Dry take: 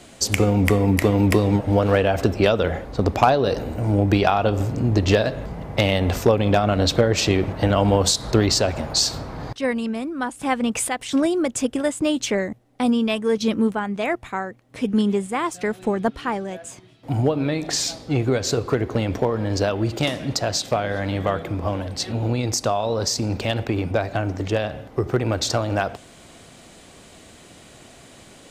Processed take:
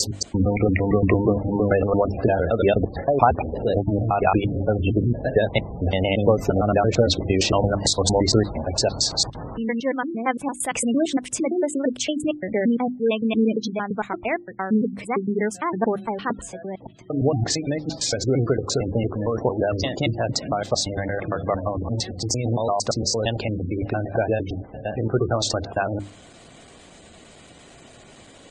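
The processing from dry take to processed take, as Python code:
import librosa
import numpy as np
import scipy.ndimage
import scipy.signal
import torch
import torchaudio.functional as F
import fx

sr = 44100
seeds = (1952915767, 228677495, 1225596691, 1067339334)

y = fx.block_reorder(x, sr, ms=114.0, group=3)
y = fx.spec_gate(y, sr, threshold_db=-20, keep='strong')
y = fx.hum_notches(y, sr, base_hz=50, count=7)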